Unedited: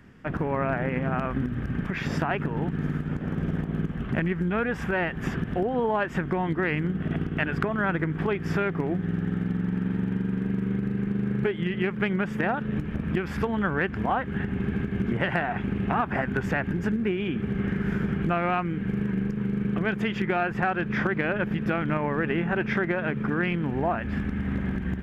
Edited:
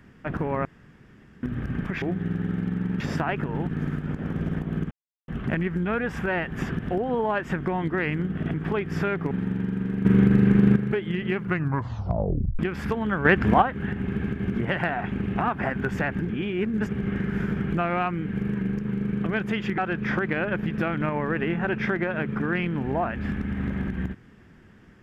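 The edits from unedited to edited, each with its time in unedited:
0.65–1.43 room tone
3.93 insert silence 0.37 s
7.19–8.08 cut
8.85–9.83 move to 2.02
10.57–11.28 gain +10 dB
11.89 tape stop 1.22 s
13.77–14.14 gain +8 dB
16.81–17.41 reverse
20.3–20.66 cut

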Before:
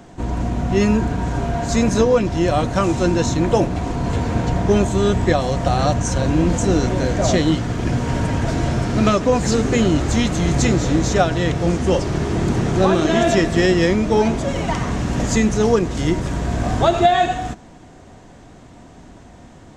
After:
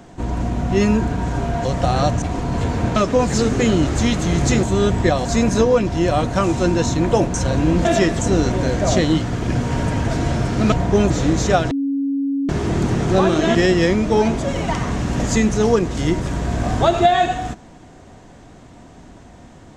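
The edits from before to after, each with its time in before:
1.65–3.74 swap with 5.48–6.05
4.48–4.86 swap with 9.09–10.76
11.37–12.15 bleep 277 Hz -17.5 dBFS
13.21–13.55 move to 6.56

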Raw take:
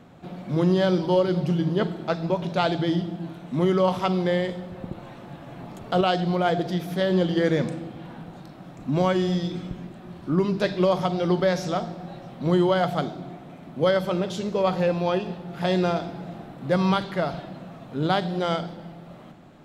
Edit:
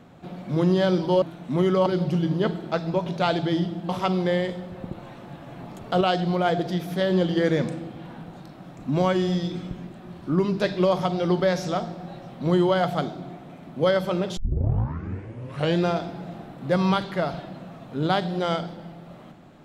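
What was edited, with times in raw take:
3.25–3.89 move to 1.22
14.37 tape start 1.48 s

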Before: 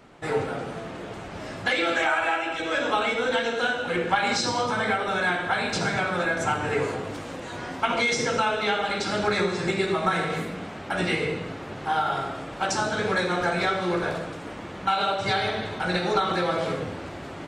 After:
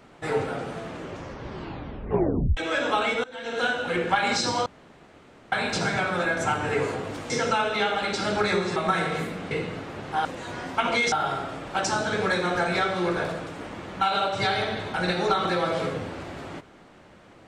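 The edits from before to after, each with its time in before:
0.88 tape stop 1.69 s
3.24–3.59 fade in quadratic, from -21 dB
4.66–5.52 room tone
7.3–8.17 move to 11.98
9.63–9.94 cut
10.69–11.24 cut

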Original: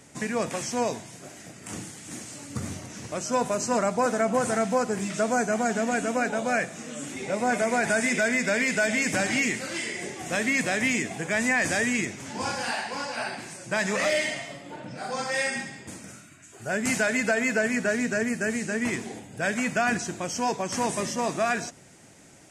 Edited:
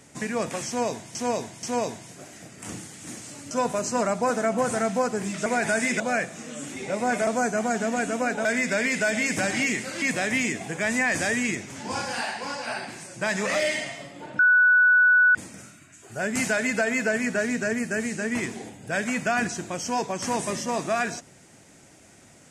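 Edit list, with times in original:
0.67–1.15 loop, 3 plays
2.55–3.27 cut
5.22–6.4 swap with 7.67–8.21
9.78–10.52 cut
14.89–15.85 bleep 1480 Hz -14 dBFS

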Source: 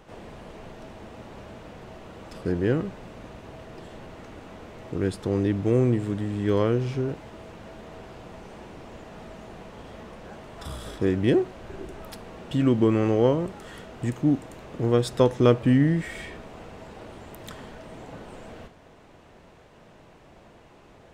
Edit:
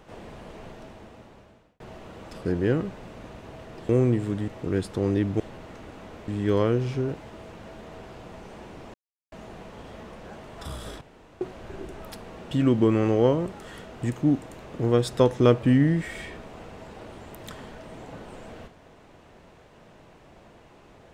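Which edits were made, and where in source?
0.67–1.8 fade out
3.89–4.77 swap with 5.69–6.28
8.94–9.32 mute
11.01–11.41 room tone

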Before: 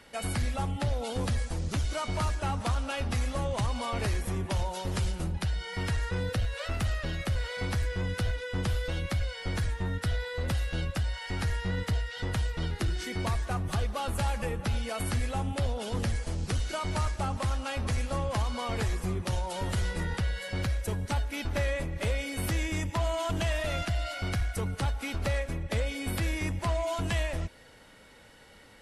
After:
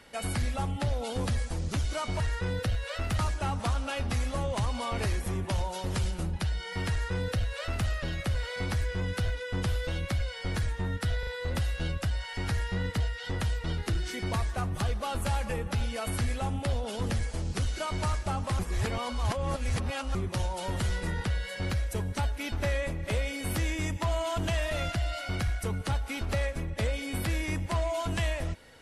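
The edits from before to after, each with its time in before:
5.9–6.89 copy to 2.2
10.2 stutter 0.04 s, 3 plays
17.52–19.08 reverse

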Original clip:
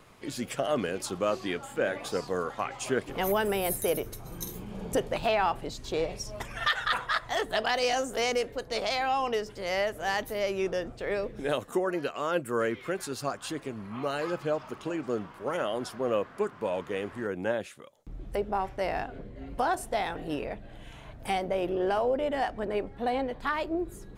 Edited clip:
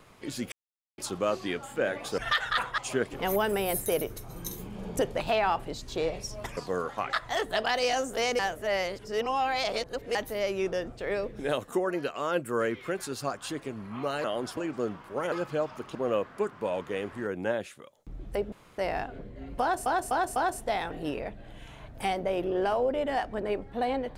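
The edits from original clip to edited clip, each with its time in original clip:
0.52–0.98 mute
2.18–2.74 swap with 6.53–7.13
8.39–10.15 reverse
14.24–14.87 swap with 15.62–15.95
18.52–18.78 room tone
19.61–19.86 loop, 4 plays

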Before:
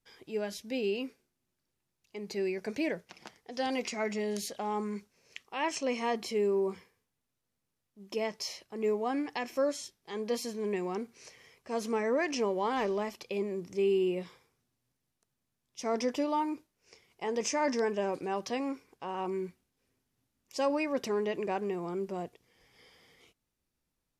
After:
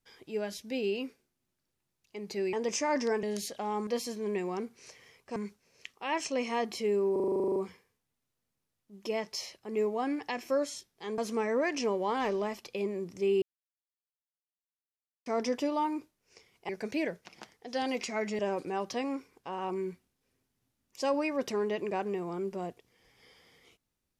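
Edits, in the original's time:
2.53–4.23 swap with 17.25–17.95
6.63 stutter 0.04 s, 12 plays
10.25–11.74 move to 4.87
13.98–15.82 mute

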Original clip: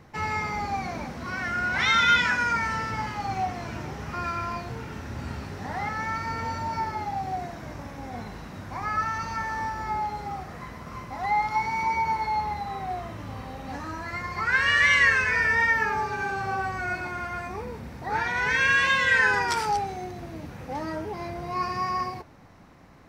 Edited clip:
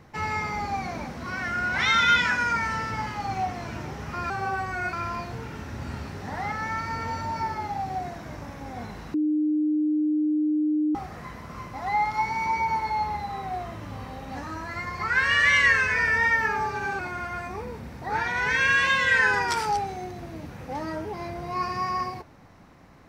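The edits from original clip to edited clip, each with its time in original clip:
8.51–10.32 bleep 304 Hz -20.5 dBFS
16.36–16.99 move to 4.3

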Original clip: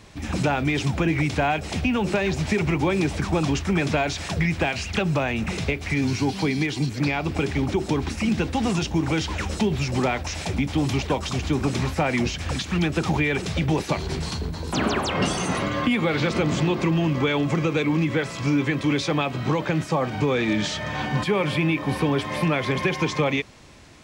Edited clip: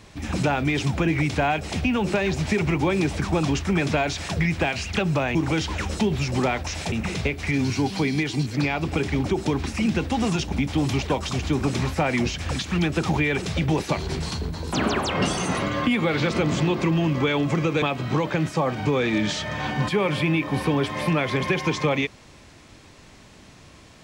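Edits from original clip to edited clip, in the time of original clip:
8.95–10.52 move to 5.35
17.82–19.17 cut

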